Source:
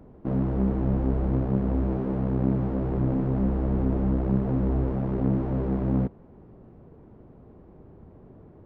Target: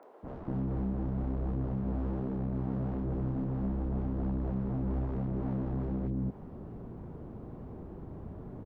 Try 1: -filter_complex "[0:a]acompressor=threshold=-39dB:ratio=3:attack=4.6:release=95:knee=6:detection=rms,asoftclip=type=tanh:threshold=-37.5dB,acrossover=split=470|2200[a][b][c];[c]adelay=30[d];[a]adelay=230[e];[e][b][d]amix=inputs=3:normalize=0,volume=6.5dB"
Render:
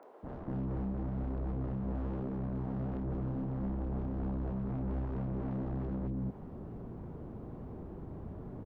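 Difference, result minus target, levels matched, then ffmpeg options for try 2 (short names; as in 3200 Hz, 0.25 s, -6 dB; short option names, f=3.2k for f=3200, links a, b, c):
soft clip: distortion +10 dB
-filter_complex "[0:a]acompressor=threshold=-39dB:ratio=3:attack=4.6:release=95:knee=6:detection=rms,asoftclip=type=tanh:threshold=-29.5dB,acrossover=split=470|2200[a][b][c];[c]adelay=30[d];[a]adelay=230[e];[e][b][d]amix=inputs=3:normalize=0,volume=6.5dB"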